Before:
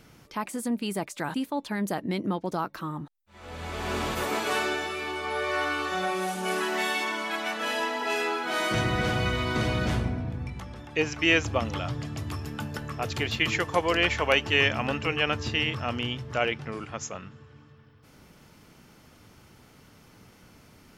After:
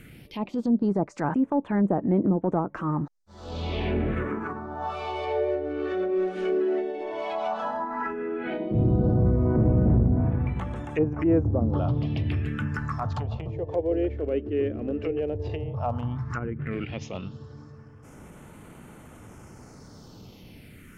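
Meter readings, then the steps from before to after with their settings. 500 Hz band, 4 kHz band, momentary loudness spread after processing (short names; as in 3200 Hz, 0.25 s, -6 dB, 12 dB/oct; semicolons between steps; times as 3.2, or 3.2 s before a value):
+3.0 dB, -16.0 dB, 11 LU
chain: treble ducked by the level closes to 420 Hz, closed at -23.5 dBFS; transient shaper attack -7 dB, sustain -2 dB; phaser stages 4, 0.12 Hz, lowest notch 150–4900 Hz; gain +8 dB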